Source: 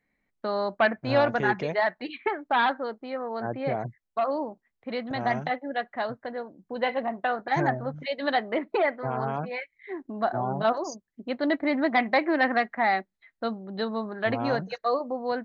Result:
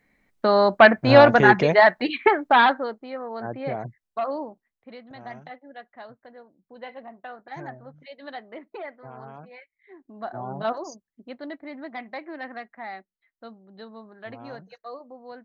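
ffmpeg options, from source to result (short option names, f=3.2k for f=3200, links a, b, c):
-af "volume=20dB,afade=t=out:st=2.29:d=0.73:silence=0.281838,afade=t=out:st=4.33:d=0.66:silence=0.266073,afade=t=in:st=10:d=0.72:silence=0.316228,afade=t=out:st=10.72:d=0.85:silence=0.298538"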